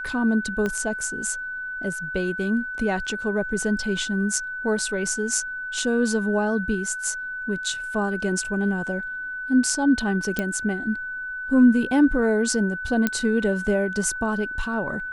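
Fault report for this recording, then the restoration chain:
whine 1.5 kHz -29 dBFS
0.66 s: pop -14 dBFS
10.39 s: pop -11 dBFS
13.07 s: pop -7 dBFS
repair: de-click; band-stop 1.5 kHz, Q 30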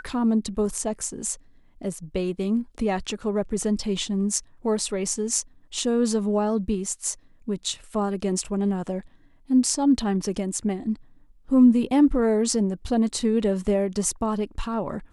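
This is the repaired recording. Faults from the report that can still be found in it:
0.66 s: pop

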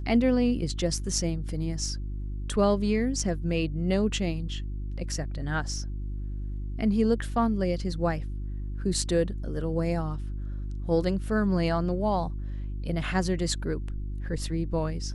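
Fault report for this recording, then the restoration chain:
hum 50 Hz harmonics 7 -33 dBFS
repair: de-hum 50 Hz, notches 7

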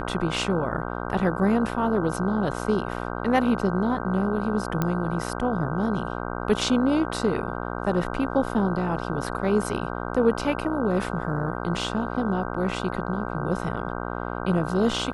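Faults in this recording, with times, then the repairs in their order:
buzz 60 Hz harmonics 26 -31 dBFS
4.82 s: pop -11 dBFS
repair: de-click; de-hum 60 Hz, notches 26

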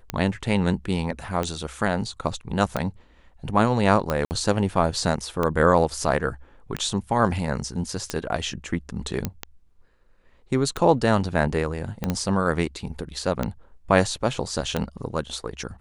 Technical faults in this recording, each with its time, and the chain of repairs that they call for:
tick 45 rpm -11 dBFS
4.25–4.31 s: dropout 59 ms
9.25 s: pop -10 dBFS
12.04 s: pop -12 dBFS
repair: de-click; interpolate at 4.25 s, 59 ms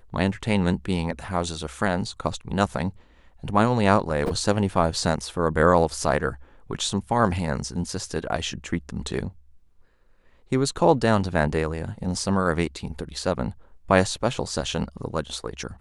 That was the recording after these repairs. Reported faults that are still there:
9.25 s: pop
12.04 s: pop

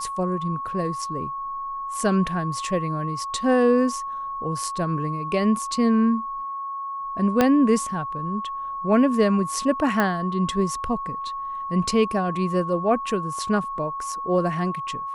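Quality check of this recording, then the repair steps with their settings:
whine 1.1 kHz -28 dBFS
7.41 s: pop -5 dBFS
10.00 s: pop -9 dBFS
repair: de-click; band-stop 1.1 kHz, Q 30

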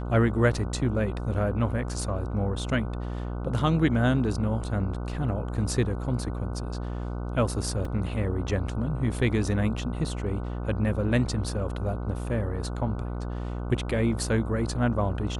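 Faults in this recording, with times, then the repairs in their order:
buzz 60 Hz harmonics 25 -32 dBFS
7.85 s: dropout 3.2 ms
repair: de-hum 60 Hz, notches 25; interpolate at 7.85 s, 3.2 ms

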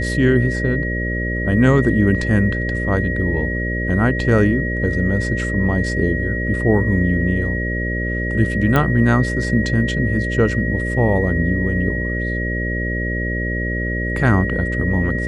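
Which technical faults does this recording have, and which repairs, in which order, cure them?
buzz 60 Hz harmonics 10 -23 dBFS
whine 1.9 kHz -24 dBFS
8.76 s: pop -5 dBFS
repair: de-click; band-stop 1.9 kHz, Q 30; de-hum 60 Hz, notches 10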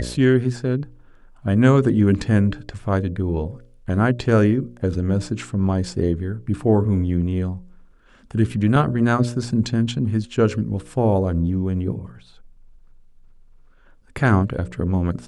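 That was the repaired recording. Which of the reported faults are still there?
nothing left

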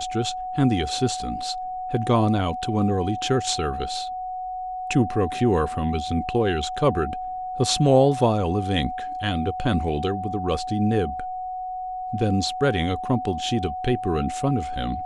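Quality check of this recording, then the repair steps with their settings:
whine 740 Hz -28 dBFS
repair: band-stop 740 Hz, Q 30

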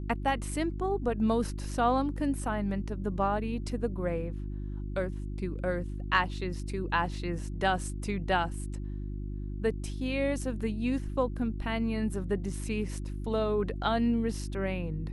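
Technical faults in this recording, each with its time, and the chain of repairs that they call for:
hum 50 Hz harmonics 7 -36 dBFS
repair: de-hum 50 Hz, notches 7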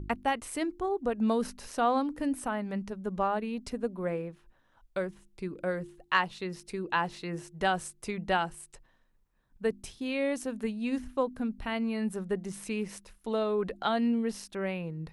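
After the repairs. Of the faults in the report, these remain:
nothing left

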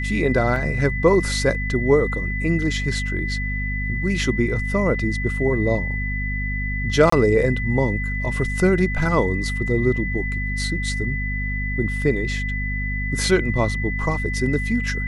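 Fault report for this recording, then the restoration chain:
hum 50 Hz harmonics 5 -26 dBFS
whine 2 kHz -27 dBFS
0.56 s: dropout 2.3 ms
7.10–7.12 s: dropout 24 ms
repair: band-stop 2 kHz, Q 30; de-hum 50 Hz, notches 5; interpolate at 0.56 s, 2.3 ms; interpolate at 7.10 s, 24 ms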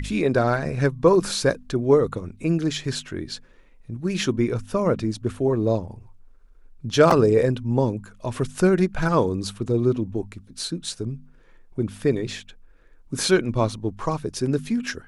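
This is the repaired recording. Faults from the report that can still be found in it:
nothing left

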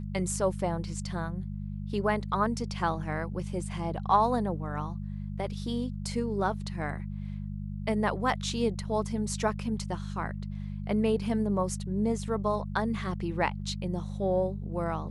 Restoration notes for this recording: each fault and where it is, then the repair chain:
hum 50 Hz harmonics 4 -36 dBFS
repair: de-hum 50 Hz, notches 4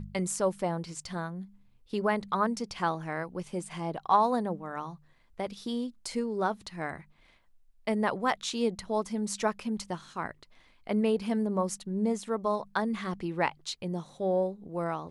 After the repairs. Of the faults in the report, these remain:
nothing left

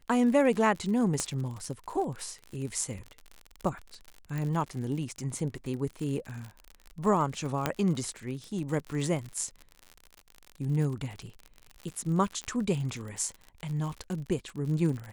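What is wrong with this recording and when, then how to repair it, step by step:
crackle 59 per s -35 dBFS
1.20 s: pop -15 dBFS
4.38 s: pop
7.66 s: pop -11 dBFS
12.44 s: pop -23 dBFS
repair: de-click

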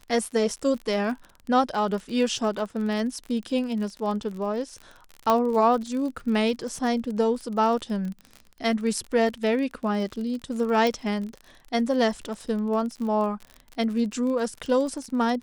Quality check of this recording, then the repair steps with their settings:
crackle 38 per s -32 dBFS
5.30 s: pop -9 dBFS
10.87 s: pop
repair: de-click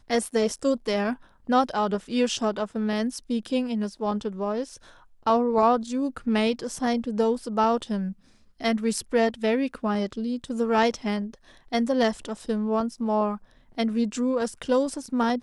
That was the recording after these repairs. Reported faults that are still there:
nothing left

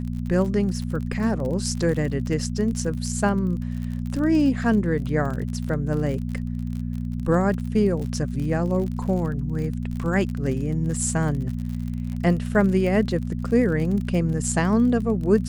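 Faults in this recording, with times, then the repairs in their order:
crackle 42 per s -30 dBFS
hum 60 Hz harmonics 4 -28 dBFS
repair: de-click; de-hum 60 Hz, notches 4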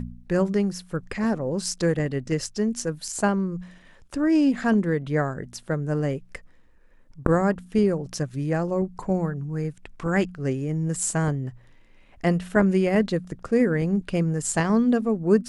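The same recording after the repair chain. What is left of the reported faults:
nothing left

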